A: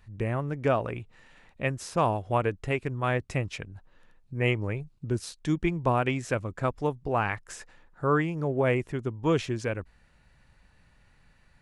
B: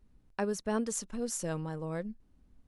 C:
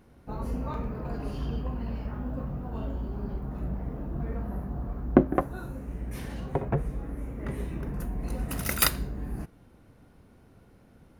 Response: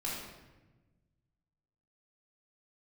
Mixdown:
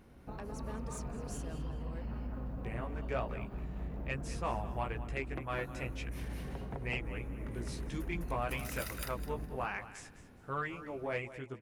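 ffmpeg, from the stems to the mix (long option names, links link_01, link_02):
-filter_complex "[0:a]lowshelf=frequency=380:gain=-7.5,flanger=delay=15:depth=3.2:speed=1.1,adelay=2450,volume=-6dB,asplit=2[link_01][link_02];[link_02]volume=-15dB[link_03];[1:a]volume=-6dB,asplit=2[link_04][link_05];[link_05]volume=-23dB[link_06];[2:a]acompressor=threshold=-32dB:ratio=12,volume=-2dB,asplit=2[link_07][link_08];[link_08]volume=-6.5dB[link_09];[link_04][link_07]amix=inputs=2:normalize=0,asoftclip=type=tanh:threshold=-30dB,acompressor=threshold=-41dB:ratio=6,volume=0dB[link_10];[link_03][link_06][link_09]amix=inputs=3:normalize=0,aecho=0:1:207|414|621|828:1|0.23|0.0529|0.0122[link_11];[link_01][link_10][link_11]amix=inputs=3:normalize=0,equalizer=frequency=2400:width=1.5:gain=2.5,asoftclip=type=tanh:threshold=-24dB"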